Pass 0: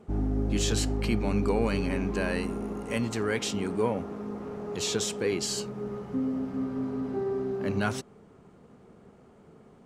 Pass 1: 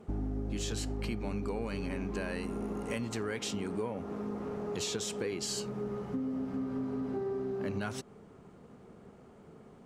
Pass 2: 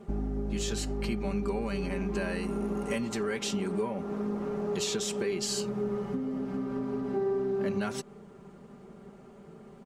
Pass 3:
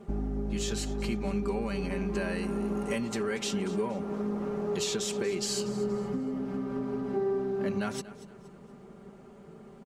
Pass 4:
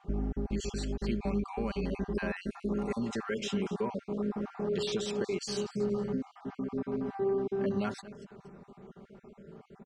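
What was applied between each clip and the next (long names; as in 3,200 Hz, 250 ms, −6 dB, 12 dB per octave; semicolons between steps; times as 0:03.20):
downward compressor, threshold −32 dBFS, peak gain reduction 11 dB
comb filter 5.1 ms, depth 62%; level +2 dB
repeating echo 236 ms, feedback 36%, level −16.5 dB
time-frequency cells dropped at random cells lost 34%; high-frequency loss of the air 85 metres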